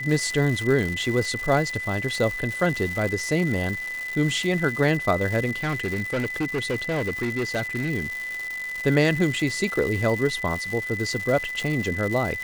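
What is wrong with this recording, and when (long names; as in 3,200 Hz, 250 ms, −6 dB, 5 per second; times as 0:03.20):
surface crackle 320 per second −28 dBFS
whistle 2,000 Hz −29 dBFS
0:05.56–0:07.91: clipping −21.5 dBFS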